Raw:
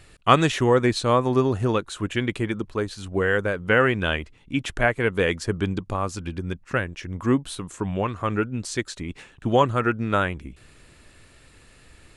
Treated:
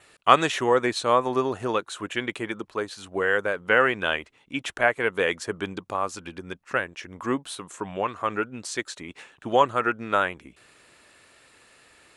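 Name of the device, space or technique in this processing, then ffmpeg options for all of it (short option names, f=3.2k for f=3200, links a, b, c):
filter by subtraction: -filter_complex "[0:a]adynamicequalizer=threshold=0.00126:dfrequency=4800:dqfactor=7:tfrequency=4800:tqfactor=7:attack=5:release=100:ratio=0.375:range=2.5:mode=cutabove:tftype=bell,asplit=2[a][b];[b]lowpass=760,volume=-1[c];[a][c]amix=inputs=2:normalize=0,volume=-1dB"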